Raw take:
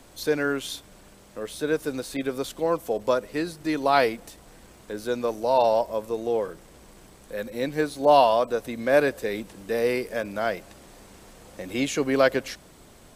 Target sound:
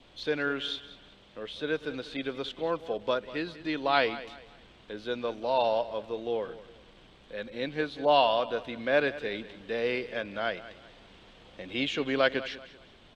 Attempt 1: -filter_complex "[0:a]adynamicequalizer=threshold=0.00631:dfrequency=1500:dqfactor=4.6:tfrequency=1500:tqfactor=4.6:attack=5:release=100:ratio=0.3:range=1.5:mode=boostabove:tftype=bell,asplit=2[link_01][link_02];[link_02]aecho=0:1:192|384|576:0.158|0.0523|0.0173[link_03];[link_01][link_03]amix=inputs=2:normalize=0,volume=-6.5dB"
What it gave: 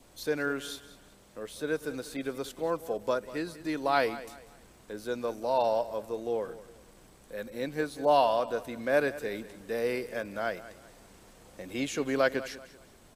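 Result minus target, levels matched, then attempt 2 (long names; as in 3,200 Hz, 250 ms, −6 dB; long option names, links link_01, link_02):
4,000 Hz band −6.5 dB
-filter_complex "[0:a]adynamicequalizer=threshold=0.00631:dfrequency=1500:dqfactor=4.6:tfrequency=1500:tqfactor=4.6:attack=5:release=100:ratio=0.3:range=1.5:mode=boostabove:tftype=bell,lowpass=frequency=3300:width_type=q:width=3.3,asplit=2[link_01][link_02];[link_02]aecho=0:1:192|384|576:0.158|0.0523|0.0173[link_03];[link_01][link_03]amix=inputs=2:normalize=0,volume=-6.5dB"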